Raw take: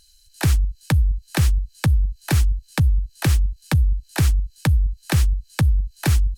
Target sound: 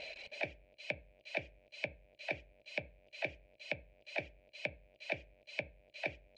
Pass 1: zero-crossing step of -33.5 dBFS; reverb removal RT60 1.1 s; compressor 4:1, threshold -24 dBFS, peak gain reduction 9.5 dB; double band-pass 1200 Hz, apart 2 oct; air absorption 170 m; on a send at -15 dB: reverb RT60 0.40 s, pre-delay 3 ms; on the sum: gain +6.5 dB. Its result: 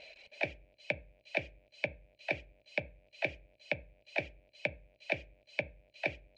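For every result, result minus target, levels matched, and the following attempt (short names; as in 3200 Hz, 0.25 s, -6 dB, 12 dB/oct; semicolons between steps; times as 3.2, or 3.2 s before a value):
compressor: peak gain reduction -5.5 dB; zero-crossing step: distortion -6 dB
zero-crossing step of -33.5 dBFS; reverb removal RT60 1.1 s; compressor 4:1, threshold -31 dBFS, peak gain reduction 14.5 dB; double band-pass 1200 Hz, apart 2 oct; air absorption 170 m; on a send at -15 dB: reverb RT60 0.40 s, pre-delay 3 ms; on the sum: gain +6.5 dB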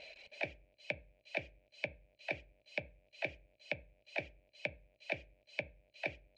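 zero-crossing step: distortion -6 dB
zero-crossing step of -26.5 dBFS; reverb removal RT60 1.1 s; compressor 4:1, threshold -31 dBFS, peak gain reduction 15 dB; double band-pass 1200 Hz, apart 2 oct; air absorption 170 m; on a send at -15 dB: reverb RT60 0.40 s, pre-delay 3 ms; on the sum: gain +6.5 dB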